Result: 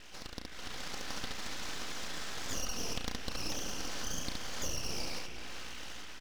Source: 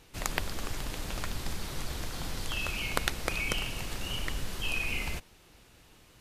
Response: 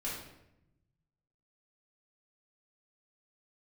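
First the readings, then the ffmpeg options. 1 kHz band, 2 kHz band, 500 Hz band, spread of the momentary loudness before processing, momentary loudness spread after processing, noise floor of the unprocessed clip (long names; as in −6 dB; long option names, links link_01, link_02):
−4.5 dB, −8.5 dB, −4.0 dB, 7 LU, 7 LU, −59 dBFS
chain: -filter_complex "[0:a]asplit=2[link_01][link_02];[1:a]atrim=start_sample=2205,asetrate=48510,aresample=44100,adelay=77[link_03];[link_02][link_03]afir=irnorm=-1:irlink=0,volume=-19dB[link_04];[link_01][link_04]amix=inputs=2:normalize=0,highpass=frequency=300:width_type=q:width=0.5412,highpass=frequency=300:width_type=q:width=1.307,lowpass=frequency=3500:width_type=q:width=0.5176,lowpass=frequency=3500:width_type=q:width=0.7071,lowpass=frequency=3500:width_type=q:width=1.932,afreqshift=230,aecho=1:1:3.9:0.66,asplit=2[link_05][link_06];[link_06]aecho=0:1:33|69:0.473|0.708[link_07];[link_05][link_07]amix=inputs=2:normalize=0,acompressor=threshold=-52dB:ratio=6,asuperstop=centerf=730:order=20:qfactor=0.8,aeval=exprs='val(0)+0.000631*(sin(2*PI*60*n/s)+sin(2*PI*2*60*n/s)/2+sin(2*PI*3*60*n/s)/3+sin(2*PI*4*60*n/s)/4+sin(2*PI*5*60*n/s)/5)':channel_layout=same,aeval=exprs='abs(val(0))':channel_layout=same,dynaudnorm=framelen=230:gausssize=5:maxgain=8dB,asplit=2[link_08][link_09];[link_09]adelay=379,volume=-10dB,highshelf=frequency=4000:gain=-8.53[link_10];[link_08][link_10]amix=inputs=2:normalize=0,volume=10dB"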